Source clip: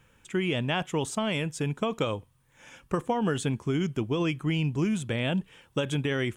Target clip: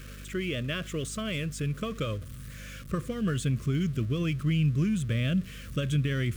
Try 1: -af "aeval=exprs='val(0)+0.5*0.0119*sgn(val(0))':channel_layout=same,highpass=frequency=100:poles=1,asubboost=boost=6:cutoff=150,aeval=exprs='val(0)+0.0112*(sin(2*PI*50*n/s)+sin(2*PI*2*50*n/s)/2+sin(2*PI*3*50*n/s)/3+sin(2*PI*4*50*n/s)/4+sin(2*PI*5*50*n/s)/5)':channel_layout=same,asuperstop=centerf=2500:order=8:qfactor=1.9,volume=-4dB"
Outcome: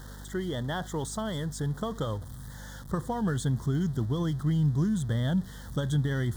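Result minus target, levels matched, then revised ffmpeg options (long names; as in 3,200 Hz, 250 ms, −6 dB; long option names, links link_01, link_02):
1,000 Hz band +6.0 dB
-af "aeval=exprs='val(0)+0.5*0.0119*sgn(val(0))':channel_layout=same,highpass=frequency=100:poles=1,asubboost=boost=6:cutoff=150,aeval=exprs='val(0)+0.0112*(sin(2*PI*50*n/s)+sin(2*PI*2*50*n/s)/2+sin(2*PI*3*50*n/s)/3+sin(2*PI*4*50*n/s)/4+sin(2*PI*5*50*n/s)/5)':channel_layout=same,asuperstop=centerf=840:order=8:qfactor=1.9,volume=-4dB"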